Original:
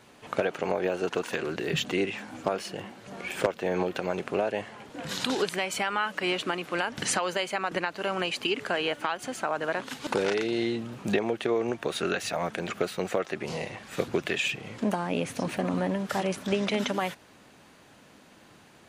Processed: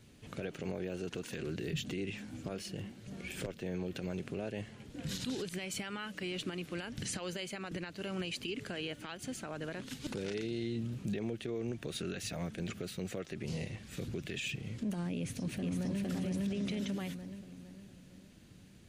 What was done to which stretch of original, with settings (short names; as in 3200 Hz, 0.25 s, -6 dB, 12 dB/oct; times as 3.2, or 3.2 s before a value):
15.16–16.03 echo throw 0.46 s, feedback 45%, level -0.5 dB
whole clip: passive tone stack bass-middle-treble 10-0-1; limiter -44 dBFS; gain +15.5 dB